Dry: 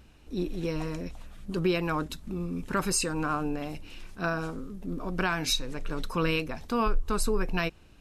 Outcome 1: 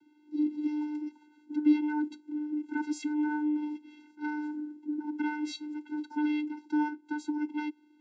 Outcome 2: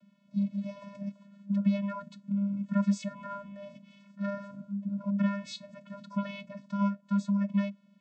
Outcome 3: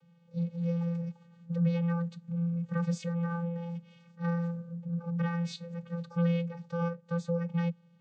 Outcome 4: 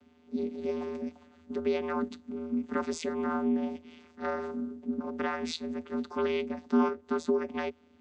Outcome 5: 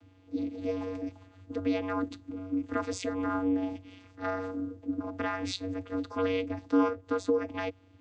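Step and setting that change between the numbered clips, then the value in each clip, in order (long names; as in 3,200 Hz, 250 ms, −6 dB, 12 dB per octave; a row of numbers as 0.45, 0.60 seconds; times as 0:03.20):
channel vocoder, frequency: 300, 200, 170, 81, 94 Hertz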